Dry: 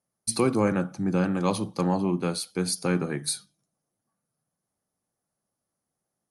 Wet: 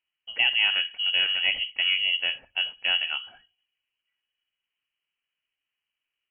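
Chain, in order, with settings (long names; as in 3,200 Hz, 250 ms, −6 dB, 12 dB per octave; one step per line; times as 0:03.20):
voice inversion scrambler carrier 3,100 Hz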